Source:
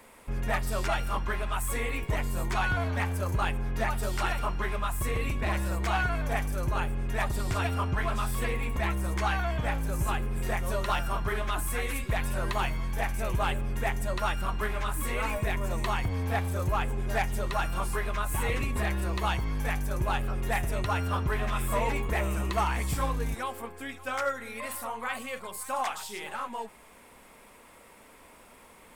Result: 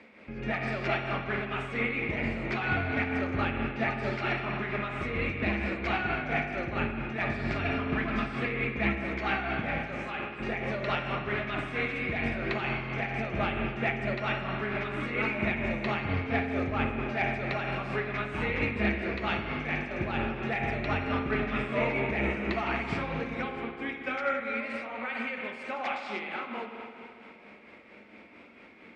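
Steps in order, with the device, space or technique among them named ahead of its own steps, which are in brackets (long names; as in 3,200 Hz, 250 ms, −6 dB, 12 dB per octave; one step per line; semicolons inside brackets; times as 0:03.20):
0:09.78–0:10.40: high-pass filter 440 Hz 12 dB per octave
combo amplifier with spring reverb and tremolo (spring reverb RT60 2.6 s, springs 43/53 ms, chirp 45 ms, DRR 1 dB; amplitude tremolo 4.4 Hz, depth 43%; loudspeaker in its box 97–4,400 Hz, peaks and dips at 120 Hz −6 dB, 220 Hz +7 dB, 330 Hz +6 dB, 1,000 Hz −9 dB, 2,300 Hz +8 dB, 3,400 Hz −3 dB)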